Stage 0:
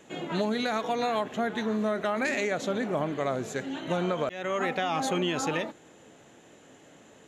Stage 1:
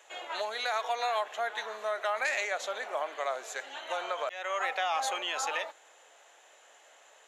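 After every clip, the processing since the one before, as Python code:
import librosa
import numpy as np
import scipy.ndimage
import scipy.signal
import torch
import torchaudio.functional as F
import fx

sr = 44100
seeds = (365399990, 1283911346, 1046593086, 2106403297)

y = scipy.signal.sosfilt(scipy.signal.butter(4, 630.0, 'highpass', fs=sr, output='sos'), x)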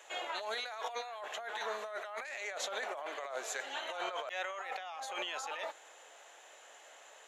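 y = fx.over_compress(x, sr, threshold_db=-38.0, ratio=-1.0)
y = F.gain(torch.from_numpy(y), -2.5).numpy()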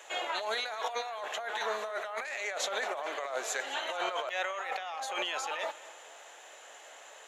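y = fx.echo_feedback(x, sr, ms=218, feedback_pct=45, wet_db=-18.5)
y = F.gain(torch.from_numpy(y), 5.0).numpy()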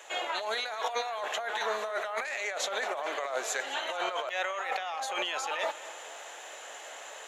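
y = fx.rider(x, sr, range_db=10, speed_s=0.5)
y = F.gain(torch.from_numpy(y), 2.0).numpy()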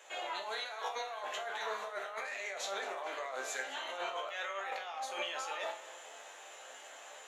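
y = fx.resonator_bank(x, sr, root=36, chord='sus4', decay_s=0.37)
y = F.gain(torch.from_numpy(y), 5.0).numpy()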